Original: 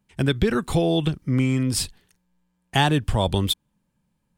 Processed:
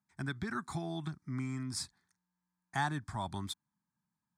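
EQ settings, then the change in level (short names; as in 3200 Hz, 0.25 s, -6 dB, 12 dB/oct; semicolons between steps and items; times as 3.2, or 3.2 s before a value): BPF 110–7100 Hz; low shelf 470 Hz -7 dB; fixed phaser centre 1200 Hz, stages 4; -7.5 dB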